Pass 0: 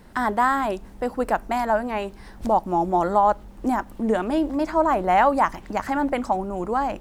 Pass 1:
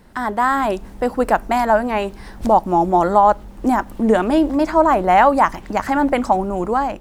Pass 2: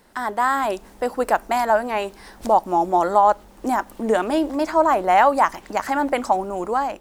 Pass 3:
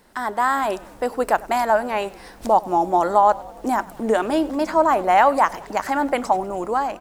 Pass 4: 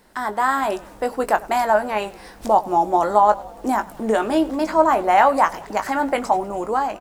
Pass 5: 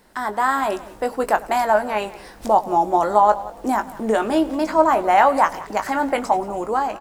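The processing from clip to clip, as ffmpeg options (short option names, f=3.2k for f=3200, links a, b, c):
-af "dynaudnorm=f=210:g=5:m=8.5dB"
-af "bass=f=250:g=-11,treble=f=4k:g=4,volume=-2.5dB"
-filter_complex "[0:a]asplit=6[a][b][c][d][e][f];[b]adelay=98,afreqshift=-38,volume=-21dB[g];[c]adelay=196,afreqshift=-76,volume=-25.3dB[h];[d]adelay=294,afreqshift=-114,volume=-29.6dB[i];[e]adelay=392,afreqshift=-152,volume=-33.9dB[j];[f]adelay=490,afreqshift=-190,volume=-38.2dB[k];[a][g][h][i][j][k]amix=inputs=6:normalize=0"
-filter_complex "[0:a]asplit=2[a][b];[b]adelay=19,volume=-9dB[c];[a][c]amix=inputs=2:normalize=0"
-af "aecho=1:1:178:0.112"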